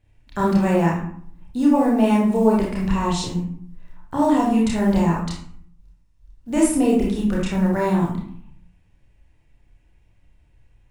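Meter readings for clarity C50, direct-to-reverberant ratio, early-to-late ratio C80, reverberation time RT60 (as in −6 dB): 1.5 dB, −5.0 dB, 7.0 dB, 0.60 s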